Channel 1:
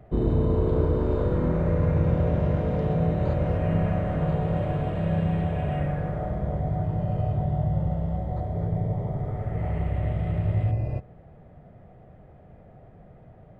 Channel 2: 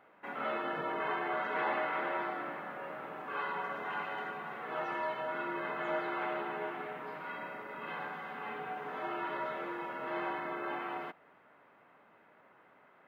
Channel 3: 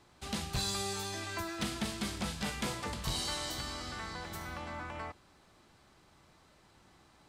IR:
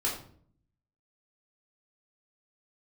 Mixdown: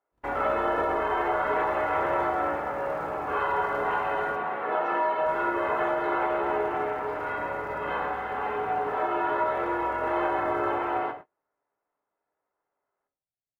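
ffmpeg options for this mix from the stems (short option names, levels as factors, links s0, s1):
-filter_complex "[0:a]lowpass=2200,tiltshelf=f=1200:g=-9,acrusher=bits=3:mode=log:mix=0:aa=0.000001,volume=0.1,asplit=3[s0][s1][s2];[s0]atrim=end=4.36,asetpts=PTS-STARTPTS,afade=t=out:st=4.356:d=0.004:c=hsin[s3];[s1]atrim=start=4.36:end=5.26,asetpts=PTS-STARTPTS,volume=0[s4];[s2]atrim=start=5.26,asetpts=PTS-STARTPTS,afade=t=in:d=0.004:c=hsin[s5];[s3][s4][s5]concat=n=3:v=0:a=1,asplit=2[s6][s7];[s7]volume=0.422[s8];[1:a]equalizer=f=660:w=0.44:g=13.5,alimiter=limit=0.133:level=0:latency=1:release=123,volume=0.75,asplit=2[s9][s10];[s10]volume=0.376[s11];[3:a]atrim=start_sample=2205[s12];[s8][s11]amix=inputs=2:normalize=0[s13];[s13][s12]afir=irnorm=-1:irlink=0[s14];[s6][s9][s14]amix=inputs=3:normalize=0,agate=range=0.0224:threshold=0.01:ratio=16:detection=peak"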